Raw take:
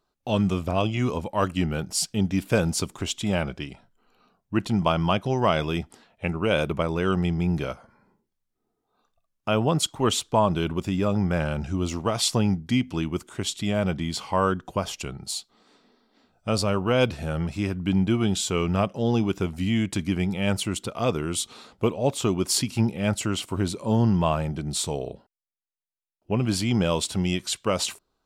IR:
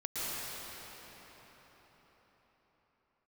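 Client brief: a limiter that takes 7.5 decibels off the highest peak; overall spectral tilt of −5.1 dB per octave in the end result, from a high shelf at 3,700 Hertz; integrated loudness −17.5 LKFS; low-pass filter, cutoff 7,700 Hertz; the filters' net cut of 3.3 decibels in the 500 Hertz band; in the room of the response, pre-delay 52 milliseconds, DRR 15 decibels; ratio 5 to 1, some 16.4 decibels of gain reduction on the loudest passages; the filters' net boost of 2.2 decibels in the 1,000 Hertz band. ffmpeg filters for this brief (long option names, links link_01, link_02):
-filter_complex "[0:a]lowpass=7700,equalizer=frequency=500:width_type=o:gain=-5.5,equalizer=frequency=1000:width_type=o:gain=4.5,highshelf=frequency=3700:gain=-4.5,acompressor=threshold=-36dB:ratio=5,alimiter=level_in=5.5dB:limit=-24dB:level=0:latency=1,volume=-5.5dB,asplit=2[link_01][link_02];[1:a]atrim=start_sample=2205,adelay=52[link_03];[link_02][link_03]afir=irnorm=-1:irlink=0,volume=-21.5dB[link_04];[link_01][link_04]amix=inputs=2:normalize=0,volume=23dB"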